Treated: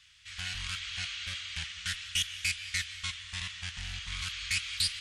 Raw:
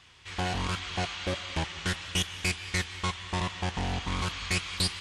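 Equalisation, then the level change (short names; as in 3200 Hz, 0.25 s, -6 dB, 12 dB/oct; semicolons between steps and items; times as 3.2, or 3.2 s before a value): passive tone stack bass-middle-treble 10-0-10; band shelf 630 Hz -14 dB; dynamic EQ 2600 Hz, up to +3 dB, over -42 dBFS, Q 0.94; 0.0 dB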